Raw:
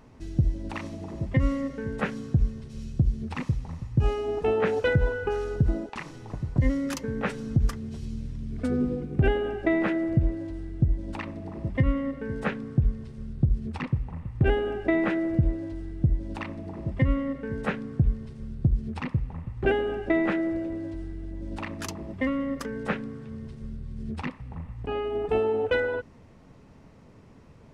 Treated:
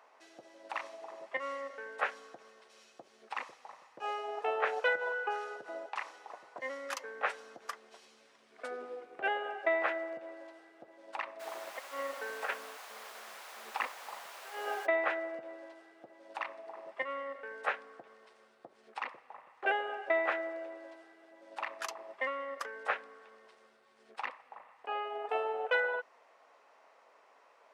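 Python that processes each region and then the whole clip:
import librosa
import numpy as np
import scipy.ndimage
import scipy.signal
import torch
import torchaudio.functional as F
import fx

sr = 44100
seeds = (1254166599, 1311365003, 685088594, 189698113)

y = fx.over_compress(x, sr, threshold_db=-29.0, ratio=-0.5, at=(11.39, 14.85), fade=0.02)
y = fx.dmg_noise_colour(y, sr, seeds[0], colour='pink', level_db=-43.0, at=(11.39, 14.85), fade=0.02)
y = scipy.signal.sosfilt(scipy.signal.butter(4, 660.0, 'highpass', fs=sr, output='sos'), y)
y = fx.high_shelf(y, sr, hz=2600.0, db=-10.5)
y = fx.notch(y, sr, hz=900.0, q=27.0)
y = y * 10.0 ** (2.5 / 20.0)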